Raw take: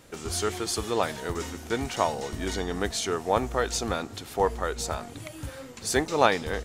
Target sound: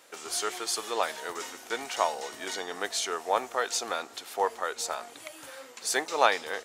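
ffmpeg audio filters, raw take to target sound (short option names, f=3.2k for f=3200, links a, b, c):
-af "highpass=580"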